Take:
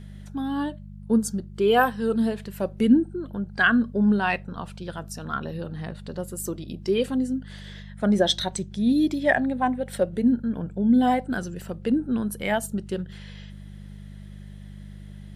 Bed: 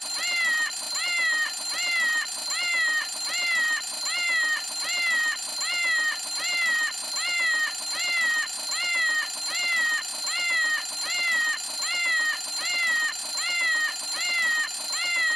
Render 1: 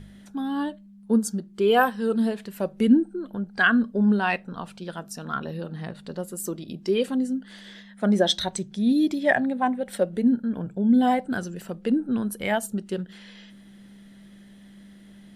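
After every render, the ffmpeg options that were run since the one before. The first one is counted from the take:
-af "bandreject=f=50:t=h:w=4,bandreject=f=100:t=h:w=4,bandreject=f=150:t=h:w=4"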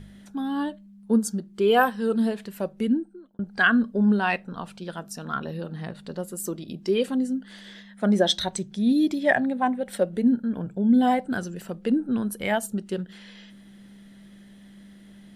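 -filter_complex "[0:a]asplit=2[a][b];[a]atrim=end=3.39,asetpts=PTS-STARTPTS,afade=t=out:st=2.48:d=0.91[c];[b]atrim=start=3.39,asetpts=PTS-STARTPTS,afade=t=in:d=0.004:c=hsin[d];[c][d]concat=n=2:v=0:a=1"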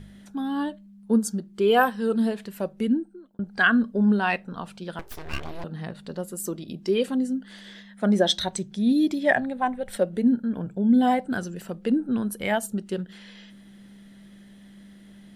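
-filter_complex "[0:a]asettb=1/sr,asplit=3[a][b][c];[a]atrim=end=4.994[d];[b]atrim=start=4.99:end=5.64,asetpts=PTS-STARTPTS,afade=t=in:d=0.004:c=qsin,afade=t=out:st=0.646:d=0.004:c=qsin,aeval=exprs='abs(val(0))':c=same[e];[c]atrim=start=5.636[f];[d][e]acrossfade=d=0.004:c1=hsin:c2=qsin[g];[g][f]acrossfade=d=0.004:c1=qsin:c2=hsin,asplit=3[h][i][j];[h]afade=t=out:st=9.39:d=0.02[k];[i]asubboost=boost=12:cutoff=62,afade=t=in:st=9.39:d=0.02,afade=t=out:st=9.95:d=0.02[l];[j]afade=t=in:st=9.95:d=0.02[m];[k][l][m]amix=inputs=3:normalize=0"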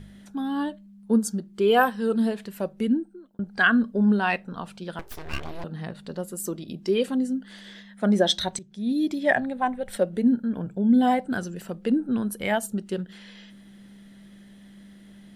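-filter_complex "[0:a]asplit=2[a][b];[a]atrim=end=8.59,asetpts=PTS-STARTPTS,afade=t=out:st=8.586:d=0.004:c=hsin:silence=0.177828[c];[b]atrim=start=8.59,asetpts=PTS-STARTPTS,afade=t=in:d=0.96:c=qsin:silence=0.177828[d];[c][d]concat=n=2:v=0:a=1"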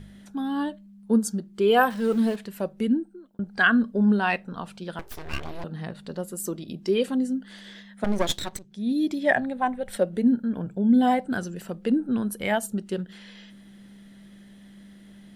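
-filter_complex "[0:a]asettb=1/sr,asplit=3[a][b][c];[a]atrim=end=1.904[d];[b]atrim=start=1.9:end=2.36,asetpts=PTS-STARTPTS,afade=t=in:d=0.004:c=qsin,afade=t=out:st=0.456:d=0.004:c=qsin,aeval=exprs='val(0)+0.5*0.015*sgn(val(0))':c=same[e];[c]atrim=start=2.356[f];[d][e]acrossfade=d=0.004:c1=hsin:c2=qsin[g];[g][f]acrossfade=d=0.004:c1=qsin:c2=hsin,asettb=1/sr,asplit=3[h][i][j];[h]atrim=end=8.044[k];[i]atrim=start=8.04:end=8.65,asetpts=PTS-STARTPTS,afade=t=in:d=0.004:c=qsin,afade=t=out:st=0.606:d=0.004:c=qsin,aeval=exprs='max(val(0),0)':c=same[l];[j]atrim=start=8.646[m];[k][l]acrossfade=d=0.004:c1=hsin:c2=qsin[n];[n][m]acrossfade=d=0.004:c1=qsin:c2=hsin"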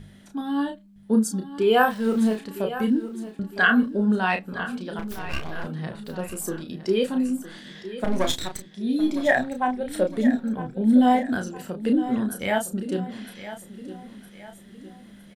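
-filter_complex "[0:a]asplit=2[a][b];[b]adelay=32,volume=-5.5dB[c];[a][c]amix=inputs=2:normalize=0,aecho=1:1:960|1920|2880|3840:0.211|0.093|0.0409|0.018"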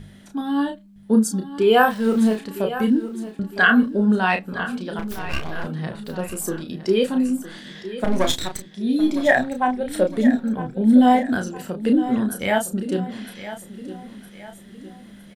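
-af "volume=3.5dB,alimiter=limit=-3dB:level=0:latency=1"

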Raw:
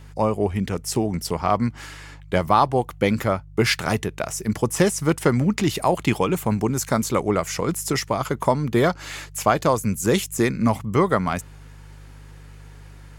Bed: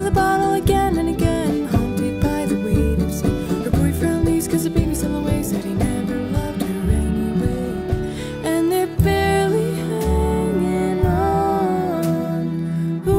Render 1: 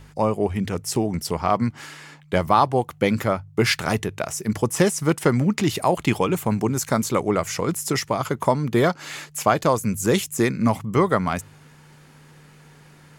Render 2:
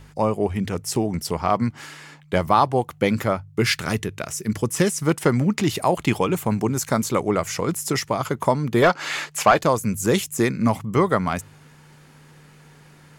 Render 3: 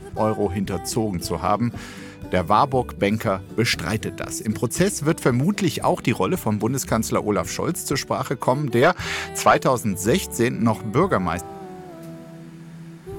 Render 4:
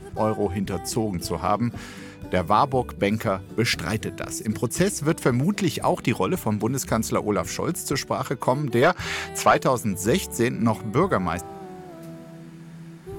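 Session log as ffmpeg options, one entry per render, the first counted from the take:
-af "bandreject=f=50:t=h:w=4,bandreject=f=100:t=h:w=4"
-filter_complex "[0:a]asettb=1/sr,asplit=3[a][b][c];[a]atrim=end=3.454[d];[b]atrim=start=3.45:end=5.01,asetpts=PTS-STARTPTS,afade=t=in:d=0.004:c=qsin,afade=t=out:st=1.556:d=0.004:c=qsin,equalizer=f=760:w=1.4:g=-7[e];[c]atrim=start=5.006[f];[d][e]acrossfade=d=0.004:c1=hsin:c2=qsin[g];[g][f]acrossfade=d=0.004:c1=qsin:c2=hsin,asettb=1/sr,asplit=3[h][i][j];[h]atrim=end=8.824[k];[i]atrim=start=8.82:end=9.59,asetpts=PTS-STARTPTS,afade=t=in:d=0.004:c=qsin,afade=t=out:st=0.766:d=0.004:c=qsin,asplit=2[l][m];[m]highpass=f=720:p=1,volume=15dB,asoftclip=type=tanh:threshold=-3.5dB[n];[l][n]amix=inputs=2:normalize=0,lowpass=f=3.3k:p=1,volume=-6dB[o];[j]atrim=start=9.586[p];[k][o]acrossfade=d=0.004:c1=hsin:c2=qsin[q];[q][p]acrossfade=d=0.004:c1=qsin:c2=hsin"
-filter_complex "[1:a]volume=-18dB[a];[0:a][a]amix=inputs=2:normalize=0"
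-af "volume=-2dB"

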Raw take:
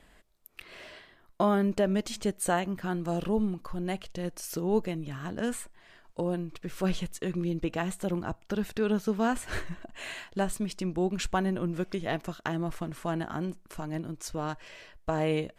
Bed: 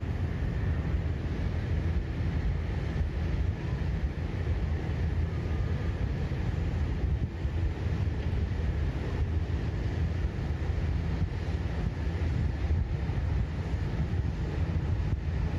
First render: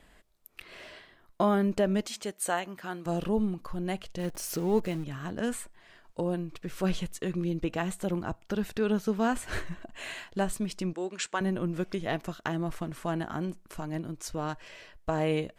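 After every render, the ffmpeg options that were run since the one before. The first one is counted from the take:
-filter_complex "[0:a]asettb=1/sr,asplit=3[a][b][c];[a]atrim=end=2.064[d];[b]atrim=start=2.06:end=3.06,asetpts=PTS-STARTPTS,afade=t=in:d=0.004:c=qsin,afade=t=out:st=0.996:d=0.004:c=qsin,highpass=f=600:p=1[e];[c]atrim=start=3.056[f];[d][e]acrossfade=d=0.004:c1=hsin:c2=qsin[g];[g][f]acrossfade=d=0.004:c1=qsin:c2=hsin,asettb=1/sr,asplit=3[h][i][j];[h]atrim=end=4.194[k];[i]atrim=start=4.19:end=5.04,asetpts=PTS-STARTPTS,afade=t=in:d=0.004:c=qsin,afade=t=out:st=0.846:d=0.004:c=qsin,aeval=exprs='val(0)+0.5*0.00891*sgn(val(0))':c=same[l];[j]atrim=start=5.036[m];[k][l]acrossfade=d=0.004:c1=hsin:c2=qsin[n];[n][m]acrossfade=d=0.004:c1=qsin:c2=hsin,asettb=1/sr,asplit=3[o][p][q];[o]atrim=end=10.934[r];[p]atrim=start=10.93:end=11.41,asetpts=PTS-STARTPTS,afade=t=in:d=0.004:c=qsin,afade=t=out:st=0.476:d=0.004:c=qsin,highpass=440,equalizer=f=750:t=q:w=4:g=-7,equalizer=f=1.8k:t=q:w=4:g=3,equalizer=f=7.6k:t=q:w=4:g=5,lowpass=f=9.3k:w=0.5412,lowpass=f=9.3k:w=1.3066[s];[q]atrim=start=11.406[t];[r][s]acrossfade=d=0.004:c1=hsin:c2=qsin[u];[u][t]acrossfade=d=0.004:c1=qsin:c2=hsin"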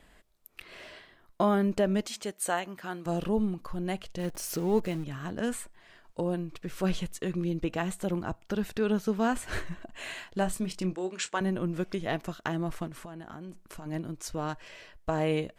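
-filter_complex "[0:a]asettb=1/sr,asplit=3[a][b][c];[a]atrim=end=10.394[d];[b]atrim=start=10.39:end=11.4,asetpts=PTS-STARTPTS,afade=t=in:d=0.004:c=qsin,afade=t=out:st=1.006:d=0.004:c=qsin,asplit=2[e][f];[f]adelay=27,volume=-11dB[g];[e][g]amix=inputs=2:normalize=0,atrim=end_sample=44541[h];[c]atrim=start=11.396[i];[d][h]acrossfade=d=0.004:c1=hsin:c2=qsin[j];[j][i]acrossfade=d=0.004:c1=qsin:c2=hsin,asettb=1/sr,asplit=3[k][l][m];[k]atrim=end=12.874[n];[l]atrim=start=12.87:end=13.86,asetpts=PTS-STARTPTS,afade=t=in:d=0.004:c=qsin,afade=t=out:st=0.986:d=0.004:c=qsin,acompressor=threshold=-38dB:ratio=16:attack=3.2:release=140:knee=1:detection=peak[o];[m]atrim=start=13.856[p];[n][o]acrossfade=d=0.004:c1=hsin:c2=qsin[q];[q][p]acrossfade=d=0.004:c1=qsin:c2=hsin"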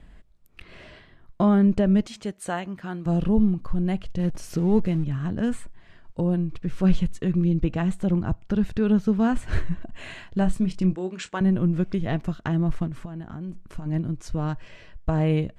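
-af "lowpass=9.6k,bass=f=250:g=14,treble=f=4k:g=-5"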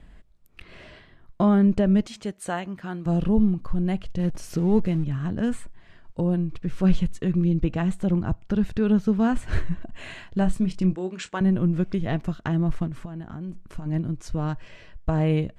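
-af anull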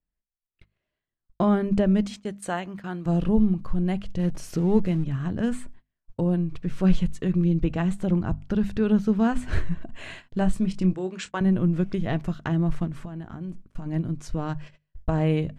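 -af "agate=range=-37dB:threshold=-39dB:ratio=16:detection=peak,bandreject=f=50:t=h:w=6,bandreject=f=100:t=h:w=6,bandreject=f=150:t=h:w=6,bandreject=f=200:t=h:w=6,bandreject=f=250:t=h:w=6"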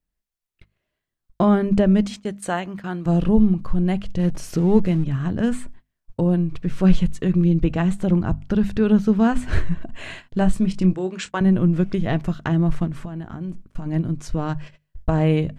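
-af "volume=4.5dB"

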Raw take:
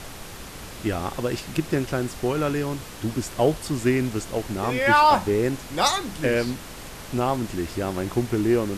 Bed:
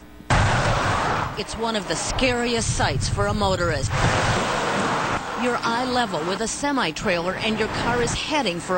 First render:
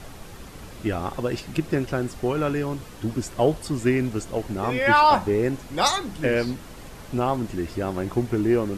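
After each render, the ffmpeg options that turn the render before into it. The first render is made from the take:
-af "afftdn=nr=7:nf=-39"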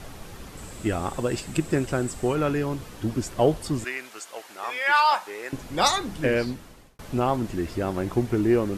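-filter_complex "[0:a]asettb=1/sr,asplit=3[a][b][c];[a]atrim=end=0.574[d];[b]atrim=start=0.57:end=2.35,asetpts=PTS-STARTPTS,afade=t=in:d=0.004:c=qsin,afade=t=out:st=1.776:d=0.004:c=qsin,equalizer=f=7.9k:t=o:w=0.26:g=14[e];[c]atrim=start=2.346[f];[d][e]acrossfade=d=0.004:c1=hsin:c2=qsin[g];[g][f]acrossfade=d=0.004:c1=qsin:c2=hsin,asettb=1/sr,asplit=3[h][i][j];[h]atrim=end=3.844[k];[i]atrim=start=3.84:end=5.53,asetpts=PTS-STARTPTS,afade=t=in:d=0.004:c=qsin,afade=t=out:st=1.686:d=0.004:c=qsin,highpass=990[l];[j]atrim=start=5.526[m];[k][l]acrossfade=d=0.004:c1=hsin:c2=qsin[n];[n][m]acrossfade=d=0.004:c1=qsin:c2=hsin,asplit=2[o][p];[o]atrim=end=6.99,asetpts=PTS-STARTPTS,afade=t=out:st=6.1:d=0.89:c=qsin[q];[p]atrim=start=6.99,asetpts=PTS-STARTPTS,afade=t=in:d=0.004:c=hsin[r];[q][r]concat=n=2:v=0:a=1"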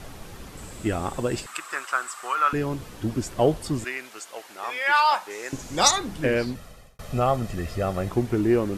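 -filter_complex "[0:a]asettb=1/sr,asplit=3[a][b][c];[a]atrim=end=1.464[d];[b]atrim=start=1.46:end=2.53,asetpts=PTS-STARTPTS,afade=t=in:d=0.004:c=qsin,afade=t=out:st=1.066:d=0.004:c=qsin,highpass=f=1.2k:t=q:w=4.6[e];[c]atrim=start=2.526[f];[d][e]acrossfade=d=0.004:c1=hsin:c2=qsin[g];[g][f]acrossfade=d=0.004:c1=qsin:c2=hsin,asettb=1/sr,asplit=3[h][i][j];[h]atrim=end=5.304[k];[i]atrim=start=5.3:end=5.91,asetpts=PTS-STARTPTS,afade=t=in:d=0.004:c=qsin,afade=t=out:st=0.606:d=0.004:c=qsin,equalizer=f=6.6k:t=o:w=0.74:g=11[l];[j]atrim=start=5.906[m];[k][l]acrossfade=d=0.004:c1=hsin:c2=qsin[n];[n][m]acrossfade=d=0.004:c1=qsin:c2=hsin,asettb=1/sr,asplit=3[o][p][q];[o]atrim=end=6.554[r];[p]atrim=start=6.55:end=8.09,asetpts=PTS-STARTPTS,afade=t=in:d=0.004:c=qsin,afade=t=out:st=1.536:d=0.004:c=qsin,aecho=1:1:1.6:0.66,atrim=end_sample=67914[s];[q]atrim=start=8.086[t];[r][s]acrossfade=d=0.004:c1=hsin:c2=qsin[u];[u][t]acrossfade=d=0.004:c1=qsin:c2=hsin"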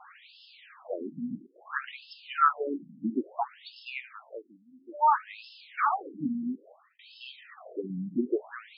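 -af "afftfilt=real='re*between(b*sr/1024,200*pow(3800/200,0.5+0.5*sin(2*PI*0.59*pts/sr))/1.41,200*pow(3800/200,0.5+0.5*sin(2*PI*0.59*pts/sr))*1.41)':imag='im*between(b*sr/1024,200*pow(3800/200,0.5+0.5*sin(2*PI*0.59*pts/sr))/1.41,200*pow(3800/200,0.5+0.5*sin(2*PI*0.59*pts/sr))*1.41)':win_size=1024:overlap=0.75"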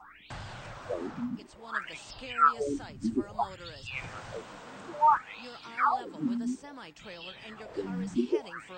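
-filter_complex "[1:a]volume=-24dB[a];[0:a][a]amix=inputs=2:normalize=0"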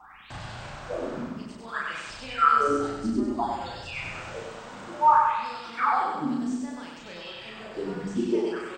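-filter_complex "[0:a]asplit=2[a][b];[b]adelay=35,volume=-2dB[c];[a][c]amix=inputs=2:normalize=0,asplit=2[d][e];[e]aecho=0:1:96|192|288|384|480|576|672:0.708|0.382|0.206|0.111|0.0602|0.0325|0.0176[f];[d][f]amix=inputs=2:normalize=0"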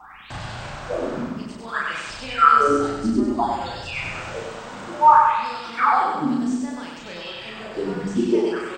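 -af "volume=6dB"

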